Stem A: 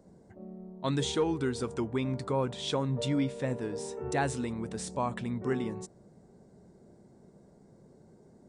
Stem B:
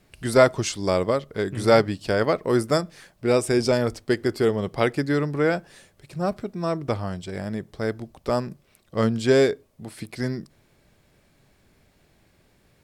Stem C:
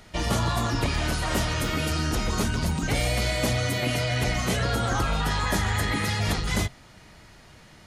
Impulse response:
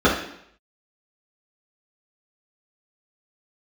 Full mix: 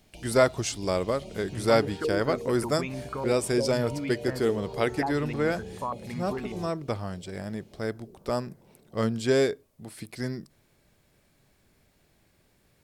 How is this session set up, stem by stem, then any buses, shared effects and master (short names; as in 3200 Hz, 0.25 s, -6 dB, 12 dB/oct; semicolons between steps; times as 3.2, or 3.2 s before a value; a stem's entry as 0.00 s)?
-2.5 dB, 0.85 s, bus A, no send, stepped low-pass 6.7 Hz 420–2600 Hz
-5.0 dB, 0.00 s, no bus, no send, high shelf 7000 Hz +6 dB
-12.5 dB, 0.00 s, bus A, no send, elliptic band-stop 830–2300 Hz; compressor 2.5:1, threshold -35 dBFS, peak gain reduction 9.5 dB
bus A: 0.0 dB, compressor 2:1, threshold -32 dBFS, peak gain reduction 8 dB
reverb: off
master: dry